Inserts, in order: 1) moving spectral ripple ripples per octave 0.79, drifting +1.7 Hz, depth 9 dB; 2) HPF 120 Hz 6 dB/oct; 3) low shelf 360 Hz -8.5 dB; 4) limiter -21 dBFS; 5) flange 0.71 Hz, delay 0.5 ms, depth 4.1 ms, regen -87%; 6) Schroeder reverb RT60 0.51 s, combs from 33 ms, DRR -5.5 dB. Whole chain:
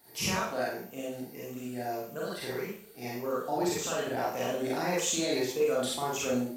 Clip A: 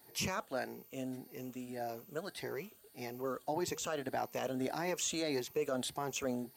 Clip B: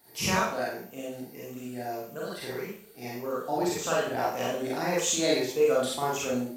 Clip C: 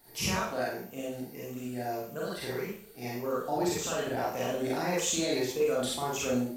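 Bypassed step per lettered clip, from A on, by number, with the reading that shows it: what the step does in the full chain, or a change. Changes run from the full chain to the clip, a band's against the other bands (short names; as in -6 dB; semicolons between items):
6, loudness change -6.5 LU; 4, crest factor change +3.0 dB; 2, 125 Hz band +2.0 dB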